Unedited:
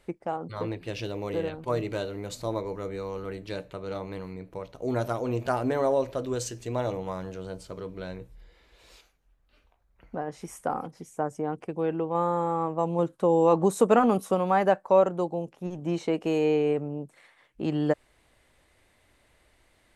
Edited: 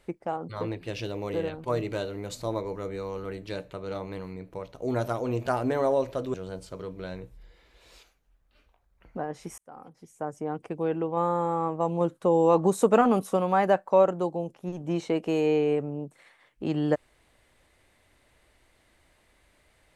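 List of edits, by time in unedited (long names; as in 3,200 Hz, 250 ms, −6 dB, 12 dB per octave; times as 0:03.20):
0:06.34–0:07.32: remove
0:10.56–0:11.64: fade in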